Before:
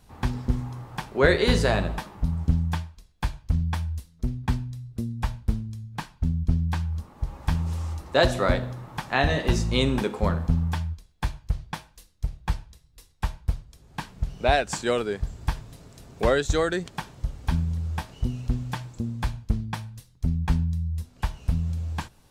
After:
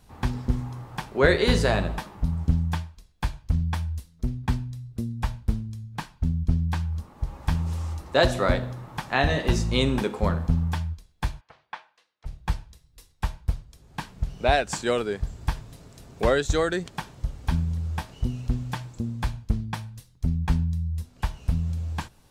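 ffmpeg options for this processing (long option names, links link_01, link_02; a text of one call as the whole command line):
ffmpeg -i in.wav -filter_complex "[0:a]asplit=3[link_01][link_02][link_03];[link_01]afade=type=out:start_time=11.4:duration=0.02[link_04];[link_02]highpass=720,lowpass=2500,afade=type=in:start_time=11.4:duration=0.02,afade=type=out:start_time=12.25:duration=0.02[link_05];[link_03]afade=type=in:start_time=12.25:duration=0.02[link_06];[link_04][link_05][link_06]amix=inputs=3:normalize=0" out.wav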